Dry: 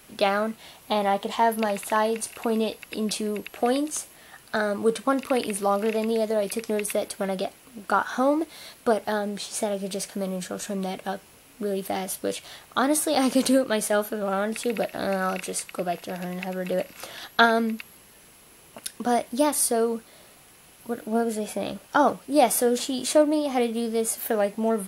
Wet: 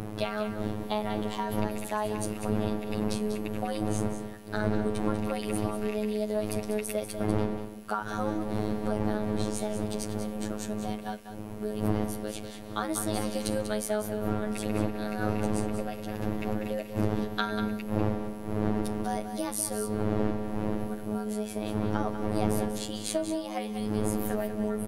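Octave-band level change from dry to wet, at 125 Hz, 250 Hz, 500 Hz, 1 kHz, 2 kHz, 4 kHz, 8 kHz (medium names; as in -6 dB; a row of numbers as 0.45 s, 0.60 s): +6.5 dB, -2.5 dB, -7.0 dB, -9.0 dB, -9.0 dB, -8.0 dB, -8.5 dB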